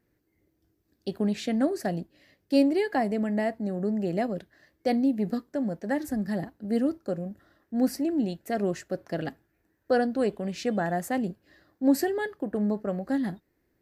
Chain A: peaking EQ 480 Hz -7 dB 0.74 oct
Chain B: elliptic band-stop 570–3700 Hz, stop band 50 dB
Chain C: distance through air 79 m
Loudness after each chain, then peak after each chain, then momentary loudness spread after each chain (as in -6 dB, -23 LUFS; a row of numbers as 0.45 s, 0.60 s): -30.5 LUFS, -29.5 LUFS, -28.5 LUFS; -13.0 dBFS, -13.5 dBFS, -11.5 dBFS; 10 LU, 10 LU, 10 LU